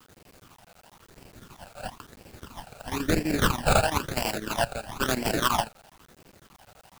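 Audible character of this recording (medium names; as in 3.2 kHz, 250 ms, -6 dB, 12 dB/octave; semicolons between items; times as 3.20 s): aliases and images of a low sample rate 2.1 kHz, jitter 20%; phasing stages 12, 1 Hz, lowest notch 320–1200 Hz; chopped level 12 Hz, depth 65%, duty 75%; a quantiser's noise floor 10-bit, dither none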